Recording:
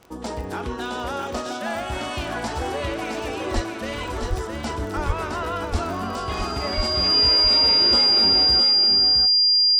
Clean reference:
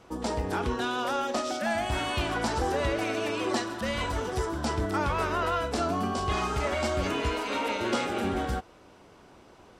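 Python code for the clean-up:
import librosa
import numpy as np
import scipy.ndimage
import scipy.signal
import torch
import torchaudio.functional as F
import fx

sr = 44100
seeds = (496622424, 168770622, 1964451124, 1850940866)

y = fx.fix_declick_ar(x, sr, threshold=6.5)
y = fx.notch(y, sr, hz=4800.0, q=30.0)
y = fx.fix_deplosive(y, sr, at_s=(3.54, 4.29, 5.06, 5.71, 6.76))
y = fx.fix_echo_inverse(y, sr, delay_ms=664, level_db=-5.5)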